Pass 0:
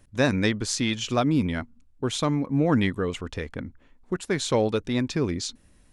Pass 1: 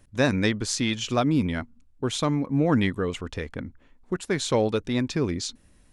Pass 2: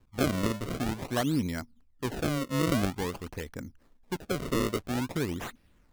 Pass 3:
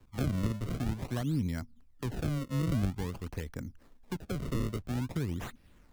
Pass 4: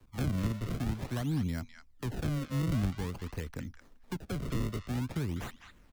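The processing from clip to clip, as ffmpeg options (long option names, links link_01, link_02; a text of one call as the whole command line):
ffmpeg -i in.wav -af anull out.wav
ffmpeg -i in.wav -af "acrusher=samples=31:mix=1:aa=0.000001:lfo=1:lforange=49.6:lforate=0.49,volume=-5.5dB" out.wav
ffmpeg -i in.wav -filter_complex "[0:a]acrossover=split=180[link_01][link_02];[link_02]acompressor=threshold=-47dB:ratio=2.5[link_03];[link_01][link_03]amix=inputs=2:normalize=0,volume=3.5dB" out.wav
ffmpeg -i in.wav -filter_complex "[0:a]acrossover=split=240|980|6600[link_01][link_02][link_03][link_04];[link_02]asoftclip=type=hard:threshold=-37dB[link_05];[link_03]aecho=1:1:204:0.473[link_06];[link_01][link_05][link_06][link_04]amix=inputs=4:normalize=0" out.wav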